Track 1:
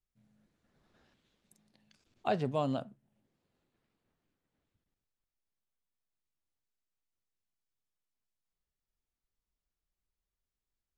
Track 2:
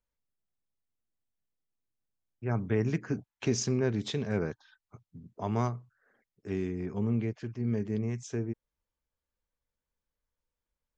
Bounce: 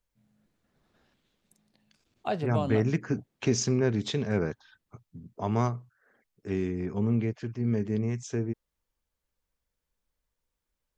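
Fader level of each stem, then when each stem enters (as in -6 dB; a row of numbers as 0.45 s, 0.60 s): +1.0 dB, +3.0 dB; 0.00 s, 0.00 s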